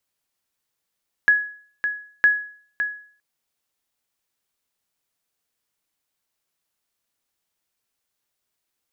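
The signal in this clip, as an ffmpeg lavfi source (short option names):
-f lavfi -i "aevalsrc='0.376*(sin(2*PI*1680*mod(t,0.96))*exp(-6.91*mod(t,0.96)/0.49)+0.376*sin(2*PI*1680*max(mod(t,0.96)-0.56,0))*exp(-6.91*max(mod(t,0.96)-0.56,0)/0.49))':d=1.92:s=44100"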